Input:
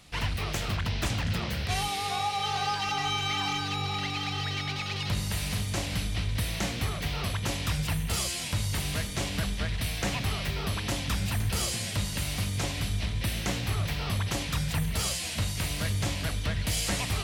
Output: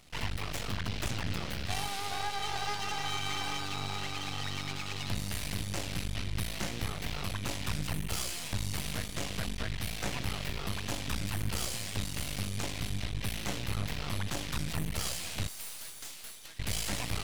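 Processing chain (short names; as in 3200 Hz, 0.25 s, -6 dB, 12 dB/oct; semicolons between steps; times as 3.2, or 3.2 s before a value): 15.48–16.59 differentiator; half-wave rectifier; gain -1 dB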